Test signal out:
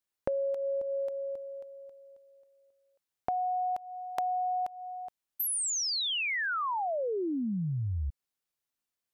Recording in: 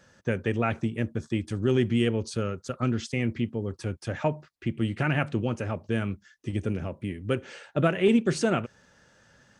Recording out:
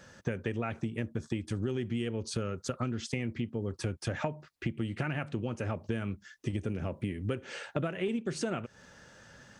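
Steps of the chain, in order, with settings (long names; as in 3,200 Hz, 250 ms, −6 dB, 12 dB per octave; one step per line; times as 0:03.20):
downward compressor 10 to 1, threshold −34 dBFS
level +4.5 dB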